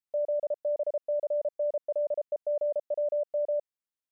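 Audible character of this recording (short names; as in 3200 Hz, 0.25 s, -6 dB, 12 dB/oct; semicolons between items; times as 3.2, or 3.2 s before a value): noise floor -94 dBFS; spectral tilt +8.5 dB/oct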